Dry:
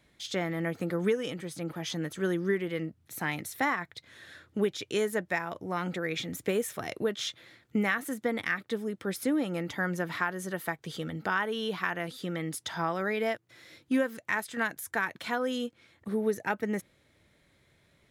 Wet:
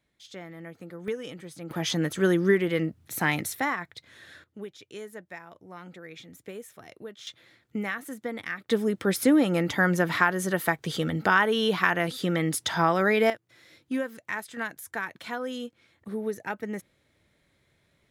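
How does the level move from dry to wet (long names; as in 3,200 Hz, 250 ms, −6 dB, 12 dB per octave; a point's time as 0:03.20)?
−10.5 dB
from 0:01.08 −4 dB
from 0:01.71 +7 dB
from 0:03.55 +0.5 dB
from 0:04.44 −11.5 dB
from 0:07.27 −3.5 dB
from 0:08.69 +8 dB
from 0:13.30 −2.5 dB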